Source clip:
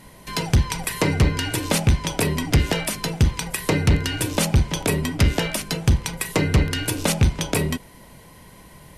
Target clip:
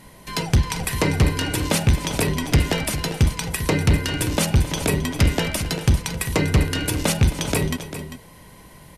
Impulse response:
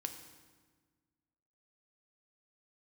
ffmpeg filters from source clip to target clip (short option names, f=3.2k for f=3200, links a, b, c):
-af "aecho=1:1:266|396:0.158|0.266"